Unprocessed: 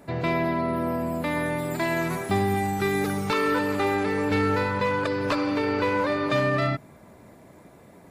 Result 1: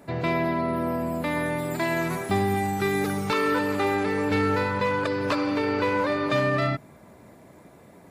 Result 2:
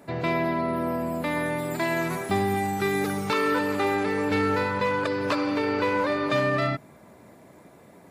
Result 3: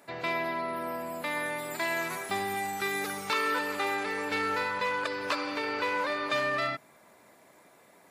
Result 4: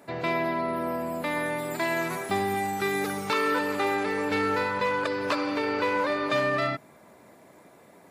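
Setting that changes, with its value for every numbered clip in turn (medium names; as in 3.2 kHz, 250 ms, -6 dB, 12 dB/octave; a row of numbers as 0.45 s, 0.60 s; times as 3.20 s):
high-pass, cutoff frequency: 42 Hz, 120 Hz, 1.2 kHz, 390 Hz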